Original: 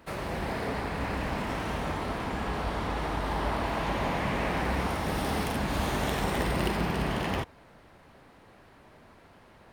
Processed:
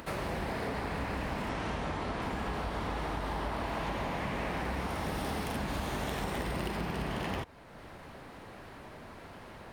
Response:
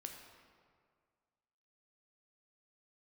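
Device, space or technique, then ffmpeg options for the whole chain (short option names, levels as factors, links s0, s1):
upward and downward compression: -filter_complex "[0:a]acompressor=mode=upward:threshold=0.00794:ratio=2.5,acompressor=threshold=0.0224:ratio=6,asettb=1/sr,asplit=3[s0][s1][s2];[s0]atrim=end=1.494[s3];[s1]atrim=start=1.49:end=2.22,asetpts=PTS-STARTPTS,afade=t=in:d=0.004:c=qsin,afade=t=out:st=0.726:d=0.004:c=qsin,lowpass=8300[s4];[s2]atrim=start=2.216[s5];[s3][s4]acrossfade=d=0.004:c1=hsin:c2=qsin[s6];[s6][s5]acrossfade=d=0.004:c1=qsin:c2=hsin,volume=1.19"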